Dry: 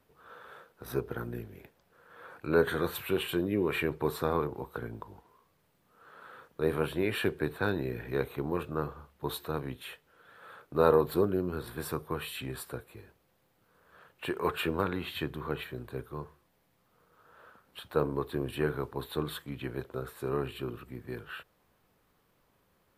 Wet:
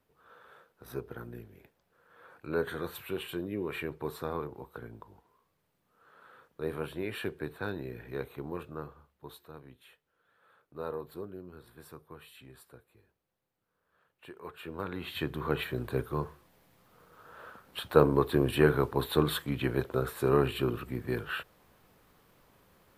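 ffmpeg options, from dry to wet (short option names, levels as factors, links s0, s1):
-af "volume=5.96,afade=t=out:st=8.54:d=0.86:silence=0.375837,afade=t=in:st=14.6:d=0.32:silence=0.334965,afade=t=in:st=14.92:d=0.99:silence=0.251189"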